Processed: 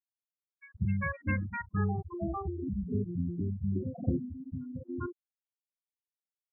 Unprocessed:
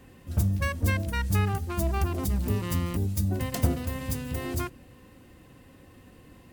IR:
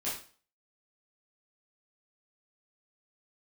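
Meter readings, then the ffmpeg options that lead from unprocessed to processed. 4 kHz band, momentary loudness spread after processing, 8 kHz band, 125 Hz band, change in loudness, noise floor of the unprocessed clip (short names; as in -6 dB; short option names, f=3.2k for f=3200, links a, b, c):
under -40 dB, 8 LU, under -40 dB, -7.0 dB, -6.0 dB, -53 dBFS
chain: -filter_complex "[0:a]highpass=130,lowpass=6.3k,afftfilt=real='re*gte(hypot(re,im),0.126)':imag='im*gte(hypot(re,im),0.126)':win_size=1024:overlap=0.75,acrossover=split=600|3100[a][b][c];[b]adelay=400[d];[a]adelay=440[e];[e][d][c]amix=inputs=3:normalize=0"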